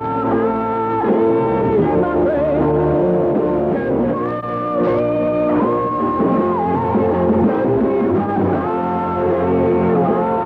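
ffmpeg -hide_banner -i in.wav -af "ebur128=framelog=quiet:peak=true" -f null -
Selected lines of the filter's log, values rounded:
Integrated loudness:
  I:         -16.7 LUFS
  Threshold: -26.7 LUFS
Loudness range:
  LRA:         1.4 LU
  Threshold: -36.7 LUFS
  LRA low:   -17.5 LUFS
  LRA high:  -16.1 LUFS
True peak:
  Peak:       -5.0 dBFS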